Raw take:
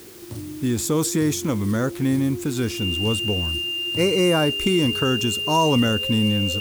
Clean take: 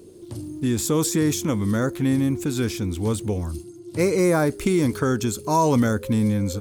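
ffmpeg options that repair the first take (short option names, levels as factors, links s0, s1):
-af "bandreject=f=2800:w=30,afwtdn=0.005"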